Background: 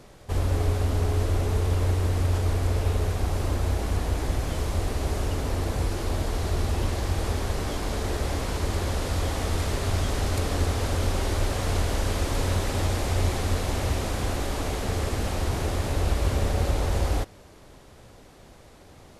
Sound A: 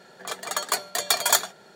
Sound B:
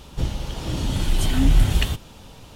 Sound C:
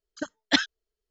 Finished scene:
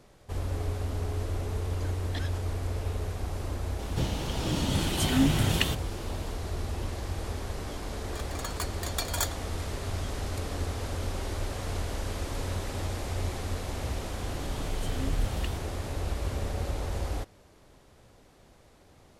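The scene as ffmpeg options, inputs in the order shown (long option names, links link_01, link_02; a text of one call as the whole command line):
ffmpeg -i bed.wav -i cue0.wav -i cue1.wav -i cue2.wav -filter_complex "[2:a]asplit=2[link_01][link_02];[0:a]volume=-7.5dB[link_03];[3:a]acompressor=threshold=-30dB:ratio=6:attack=3.2:release=140:knee=1:detection=peak[link_04];[link_01]highpass=120[link_05];[link_04]atrim=end=1.1,asetpts=PTS-STARTPTS,volume=-6.5dB,afade=type=in:duration=0.004:curve=hsin,afade=type=out:start_time=1.096:duration=0.004:curve=hsin,adelay=1630[link_06];[link_05]atrim=end=2.55,asetpts=PTS-STARTPTS,volume=-0.5dB,afade=type=in:duration=0.004:curve=hsin,afade=type=out:start_time=2.546:duration=0.004:curve=hsin,adelay=3790[link_07];[1:a]atrim=end=1.75,asetpts=PTS-STARTPTS,volume=-11dB,afade=type=in:duration=0.004:curve=hsin,afade=type=out:start_time=1.746:duration=0.004:curve=hsin,adelay=7880[link_08];[link_02]atrim=end=2.55,asetpts=PTS-STARTPTS,volume=-14.5dB,afade=type=in:duration=0.004:curve=hsin,afade=type=out:start_time=2.546:duration=0.004:curve=hsin,adelay=13620[link_09];[link_03][link_06][link_07][link_08][link_09]amix=inputs=5:normalize=0" out.wav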